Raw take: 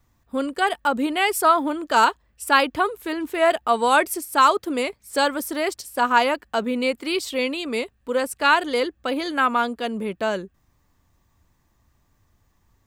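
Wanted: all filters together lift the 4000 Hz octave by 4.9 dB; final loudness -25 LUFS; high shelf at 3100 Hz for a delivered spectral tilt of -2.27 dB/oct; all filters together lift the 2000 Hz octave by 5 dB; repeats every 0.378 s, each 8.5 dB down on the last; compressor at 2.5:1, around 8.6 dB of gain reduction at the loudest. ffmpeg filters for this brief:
-af "equalizer=f=2k:t=o:g=6.5,highshelf=f=3.1k:g=-3,equalizer=f=4k:t=o:g=6,acompressor=threshold=-22dB:ratio=2.5,aecho=1:1:378|756|1134|1512:0.376|0.143|0.0543|0.0206,volume=-0.5dB"

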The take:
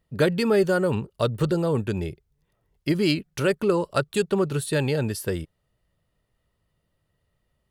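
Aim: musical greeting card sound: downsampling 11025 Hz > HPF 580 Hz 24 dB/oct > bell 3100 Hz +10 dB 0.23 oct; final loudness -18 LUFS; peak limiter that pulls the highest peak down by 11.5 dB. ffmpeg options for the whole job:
-af "alimiter=limit=-20dB:level=0:latency=1,aresample=11025,aresample=44100,highpass=f=580:w=0.5412,highpass=f=580:w=1.3066,equalizer=f=3.1k:t=o:w=0.23:g=10,volume=18.5dB"

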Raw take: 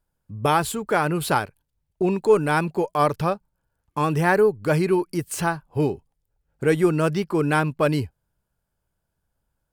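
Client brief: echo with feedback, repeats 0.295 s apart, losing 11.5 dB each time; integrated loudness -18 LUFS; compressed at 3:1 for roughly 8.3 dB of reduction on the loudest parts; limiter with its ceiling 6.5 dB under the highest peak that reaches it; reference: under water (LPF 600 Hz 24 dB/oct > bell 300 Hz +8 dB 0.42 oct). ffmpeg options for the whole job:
-af "acompressor=threshold=-23dB:ratio=3,alimiter=limit=-18dB:level=0:latency=1,lowpass=f=600:w=0.5412,lowpass=f=600:w=1.3066,equalizer=f=300:t=o:w=0.42:g=8,aecho=1:1:295|590|885:0.266|0.0718|0.0194,volume=9.5dB"

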